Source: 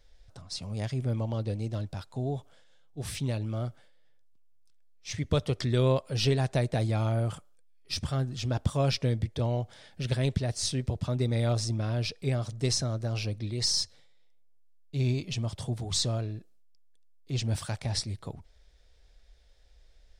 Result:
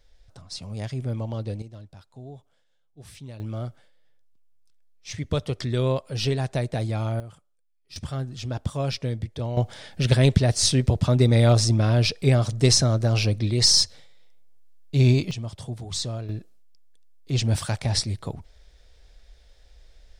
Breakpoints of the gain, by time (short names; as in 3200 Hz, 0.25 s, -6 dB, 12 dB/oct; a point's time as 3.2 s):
+1 dB
from 1.62 s -9.5 dB
from 3.4 s +1 dB
from 7.2 s -11 dB
from 7.96 s -0.5 dB
from 9.57 s +10 dB
from 15.31 s -1 dB
from 16.29 s +7 dB